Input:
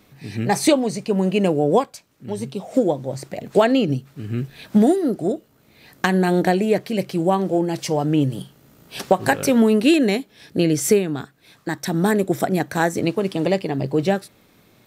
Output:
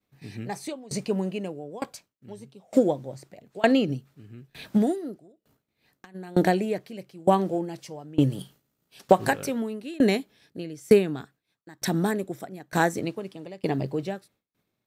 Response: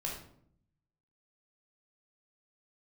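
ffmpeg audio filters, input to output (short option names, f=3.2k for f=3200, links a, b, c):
-filter_complex "[0:a]asettb=1/sr,asplit=3[a][b][c];[a]atrim=end=8.394[d];[b]atrim=start=8.39:end=9.08,asetpts=PTS-STARTPTS,afade=t=in:d=0.004:c=qsin,afade=t=out:st=0.686:d=0.004:c=qsin,highshelf=f=2.4k:g=5.5[e];[c]atrim=start=9.076[f];[d][e]acrossfade=d=0.004:c1=hsin:c2=qsin[g];[g][f]acrossfade=d=0.004:c1=qsin:c2=hsin,agate=range=-33dB:threshold=-41dB:ratio=3:detection=peak,asplit=3[h][i][j];[h]afade=t=out:st=5.18:d=0.02[k];[i]acompressor=threshold=-32dB:ratio=5,afade=t=in:st=5.18:d=0.02,afade=t=out:st=6.14:d=0.02[l];[j]afade=t=in:st=6.14:d=0.02[m];[k][l][m]amix=inputs=3:normalize=0,aeval=exprs='val(0)*pow(10,-25*if(lt(mod(1.1*n/s,1),2*abs(1.1)/1000),1-mod(1.1*n/s,1)/(2*abs(1.1)/1000),(mod(1.1*n/s,1)-2*abs(1.1)/1000)/(1-2*abs(1.1)/1000))/20)':c=same"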